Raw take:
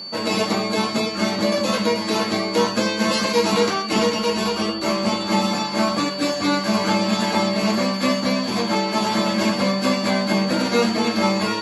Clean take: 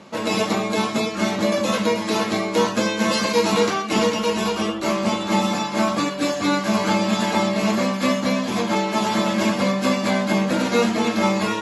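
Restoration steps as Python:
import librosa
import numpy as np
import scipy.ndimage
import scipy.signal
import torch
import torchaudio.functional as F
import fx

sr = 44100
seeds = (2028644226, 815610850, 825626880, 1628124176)

y = fx.notch(x, sr, hz=4500.0, q=30.0)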